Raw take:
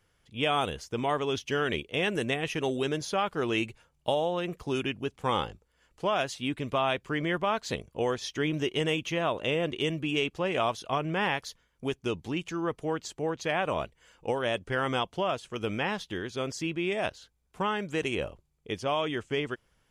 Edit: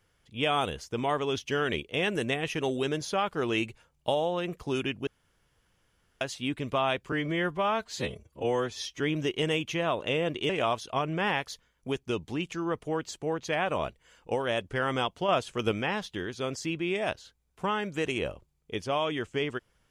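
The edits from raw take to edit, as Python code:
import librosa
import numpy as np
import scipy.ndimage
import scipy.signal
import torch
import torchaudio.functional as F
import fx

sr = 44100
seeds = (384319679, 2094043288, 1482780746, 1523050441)

y = fx.edit(x, sr, fx.room_tone_fill(start_s=5.07, length_s=1.14),
    fx.stretch_span(start_s=7.12, length_s=1.25, factor=1.5),
    fx.cut(start_s=9.87, length_s=0.59),
    fx.clip_gain(start_s=15.25, length_s=0.43, db=4.5), tone=tone)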